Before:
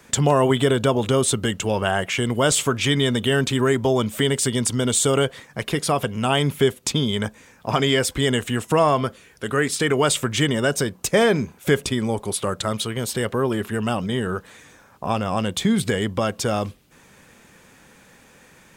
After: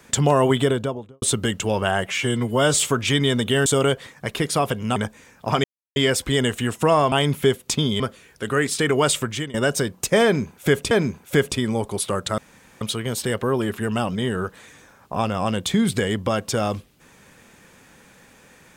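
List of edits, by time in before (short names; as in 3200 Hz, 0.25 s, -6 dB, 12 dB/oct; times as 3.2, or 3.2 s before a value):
0.53–1.22 studio fade out
2.07–2.55 stretch 1.5×
3.42–4.99 cut
6.29–7.17 move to 9.01
7.85 insert silence 0.32 s
10.18–10.55 fade out, to -20.5 dB
11.25–11.92 loop, 2 plays
12.72 insert room tone 0.43 s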